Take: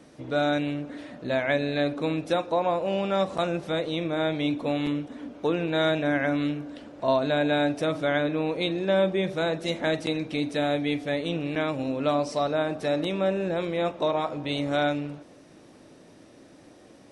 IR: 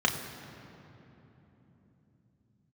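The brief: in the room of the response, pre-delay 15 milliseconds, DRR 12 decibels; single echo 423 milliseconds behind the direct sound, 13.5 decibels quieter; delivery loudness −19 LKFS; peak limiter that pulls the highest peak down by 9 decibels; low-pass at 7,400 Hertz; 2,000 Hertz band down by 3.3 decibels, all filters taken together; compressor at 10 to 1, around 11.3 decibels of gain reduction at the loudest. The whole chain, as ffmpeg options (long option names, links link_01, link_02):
-filter_complex "[0:a]lowpass=7400,equalizer=frequency=2000:width_type=o:gain=-4.5,acompressor=threshold=-31dB:ratio=10,alimiter=level_in=6.5dB:limit=-24dB:level=0:latency=1,volume=-6.5dB,aecho=1:1:423:0.211,asplit=2[link_01][link_02];[1:a]atrim=start_sample=2205,adelay=15[link_03];[link_02][link_03]afir=irnorm=-1:irlink=0,volume=-24dB[link_04];[link_01][link_04]amix=inputs=2:normalize=0,volume=20.5dB"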